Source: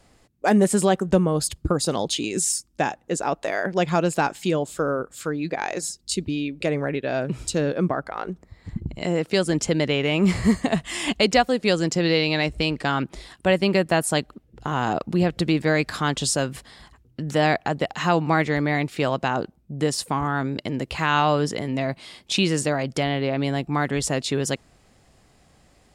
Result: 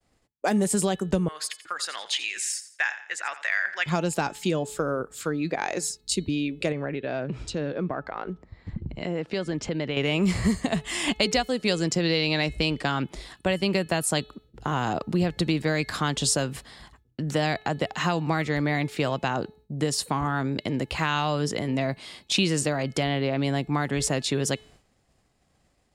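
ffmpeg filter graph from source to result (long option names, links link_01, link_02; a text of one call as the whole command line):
ffmpeg -i in.wav -filter_complex "[0:a]asettb=1/sr,asplit=3[link_01][link_02][link_03];[link_01]atrim=end=1.284[link_04];[link_02]atrim=start=1.28:end=3.86,asetpts=PTS-STARTPTS,afade=type=in:duration=0.004:curve=qsin,afade=type=out:start_time=2.576:duration=0.004:curve=qsin,highpass=frequency=1800:width_type=q:width=3.3,aemphasis=mode=reproduction:type=cd,aecho=1:1:86|172|258:0.2|0.0678|0.0231,atrim=end_sample=113778[link_05];[link_03]atrim=start=3.856[link_06];[link_04][link_05]acrossfade=duration=0.004:curve1=hsin:curve2=qsin[link_07];[link_07][link_06]acrossfade=duration=0.004:curve1=qsin:curve2=hsin,asettb=1/sr,asplit=3[link_08][link_09][link_10];[link_08]atrim=end=6.724[link_11];[link_09]atrim=start=6.72:end=9.97,asetpts=PTS-STARTPTS,afade=type=in:duration=0.004:curve=qsin,afade=type=out:start_time=3.246:duration=0.004:curve=qsin,lowpass=4200,acompressor=threshold=-29dB:ratio=2:attack=3.2:release=140:knee=1:detection=peak[link_12];[link_10]atrim=start=9.966[link_13];[link_11][link_12]acrossfade=duration=0.004:curve1=hsin:curve2=qsin[link_14];[link_14][link_13]acrossfade=duration=0.004:curve1=qsin:curve2=hsin,acrossover=split=140|3000[link_15][link_16][link_17];[link_16]acompressor=threshold=-22dB:ratio=6[link_18];[link_15][link_18][link_17]amix=inputs=3:normalize=0,bandreject=frequency=429.9:width_type=h:width=4,bandreject=frequency=859.8:width_type=h:width=4,bandreject=frequency=1289.7:width_type=h:width=4,bandreject=frequency=1719.6:width_type=h:width=4,bandreject=frequency=2149.5:width_type=h:width=4,bandreject=frequency=2579.4:width_type=h:width=4,bandreject=frequency=3009.3:width_type=h:width=4,bandreject=frequency=3439.2:width_type=h:width=4,bandreject=frequency=3869.1:width_type=h:width=4,bandreject=frequency=4299:width_type=h:width=4,agate=range=-33dB:threshold=-48dB:ratio=3:detection=peak" out.wav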